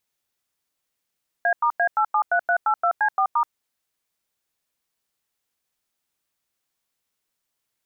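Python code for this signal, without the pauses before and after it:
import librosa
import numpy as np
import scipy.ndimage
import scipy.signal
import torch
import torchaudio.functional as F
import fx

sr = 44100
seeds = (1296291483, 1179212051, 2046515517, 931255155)

y = fx.dtmf(sr, digits='A*A873382C4*', tone_ms=79, gap_ms=94, level_db=-19.5)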